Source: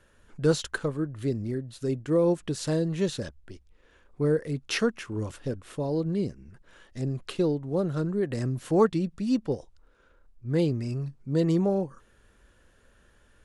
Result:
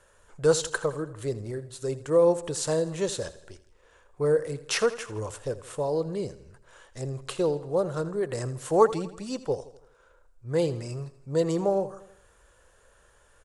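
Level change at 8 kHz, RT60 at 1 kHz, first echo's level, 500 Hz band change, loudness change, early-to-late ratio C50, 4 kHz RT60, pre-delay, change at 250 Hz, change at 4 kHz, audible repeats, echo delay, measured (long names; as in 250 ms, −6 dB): +7.0 dB, no reverb audible, −16.0 dB, +3.0 dB, 0.0 dB, no reverb audible, no reverb audible, no reverb audible, −5.5 dB, +1.5 dB, 4, 82 ms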